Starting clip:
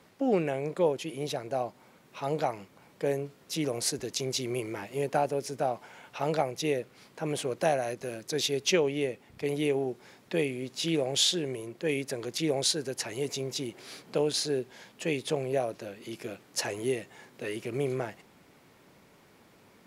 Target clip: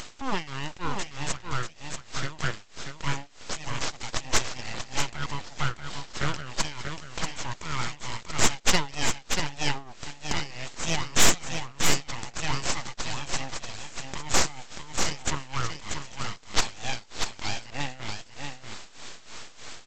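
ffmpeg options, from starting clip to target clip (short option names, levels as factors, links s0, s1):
-af "tiltshelf=f=840:g=-9.5,acompressor=mode=upward:threshold=0.0282:ratio=2.5,aresample=16000,aeval=exprs='abs(val(0))':c=same,aresample=44100,tremolo=f=3.2:d=0.82,aeval=exprs='0.531*sin(PI/2*1.78*val(0)/0.531)':c=same,aecho=1:1:637:0.501,volume=0.708"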